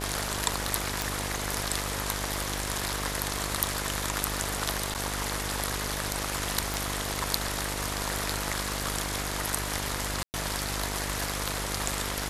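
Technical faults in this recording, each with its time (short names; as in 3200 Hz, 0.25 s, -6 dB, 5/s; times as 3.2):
buzz 50 Hz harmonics 20 -36 dBFS
crackle 14/s -38 dBFS
1.02 pop
4.94–4.95 gap 8.4 ms
6.74 pop
10.23–10.34 gap 0.109 s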